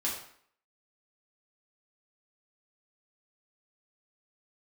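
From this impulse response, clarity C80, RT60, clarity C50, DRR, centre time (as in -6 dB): 8.0 dB, 0.60 s, 4.5 dB, -5.5 dB, 37 ms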